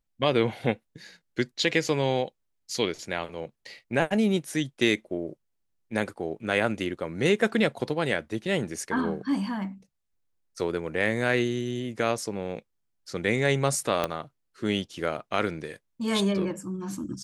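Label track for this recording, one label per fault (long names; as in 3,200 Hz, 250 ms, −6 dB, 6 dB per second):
14.040000	14.040000	click −11 dBFS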